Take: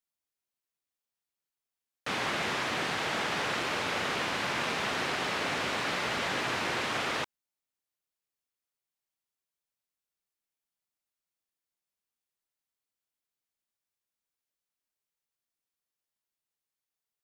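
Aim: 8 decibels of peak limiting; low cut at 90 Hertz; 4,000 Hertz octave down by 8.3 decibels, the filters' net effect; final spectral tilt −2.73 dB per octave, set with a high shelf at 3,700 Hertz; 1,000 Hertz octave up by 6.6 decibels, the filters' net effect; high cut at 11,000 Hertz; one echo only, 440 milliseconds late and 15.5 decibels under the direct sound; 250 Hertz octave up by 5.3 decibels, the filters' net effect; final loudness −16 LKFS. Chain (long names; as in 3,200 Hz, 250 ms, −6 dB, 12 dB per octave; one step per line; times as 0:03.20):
high-pass filter 90 Hz
low-pass filter 11,000 Hz
parametric band 250 Hz +6.5 dB
parametric band 1,000 Hz +9 dB
high-shelf EQ 3,700 Hz −9 dB
parametric band 4,000 Hz −6.5 dB
brickwall limiter −24 dBFS
single-tap delay 440 ms −15.5 dB
level +16.5 dB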